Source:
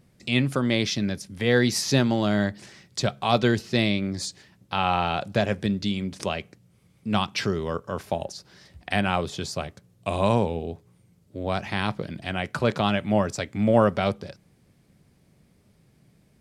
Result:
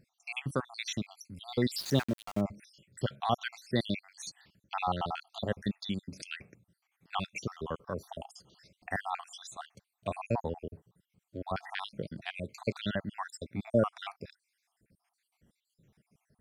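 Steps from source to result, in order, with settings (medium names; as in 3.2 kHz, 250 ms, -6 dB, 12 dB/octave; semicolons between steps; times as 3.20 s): random holes in the spectrogram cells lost 64%; 1.78–2.41 s: small samples zeroed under -33.5 dBFS; trim -5.5 dB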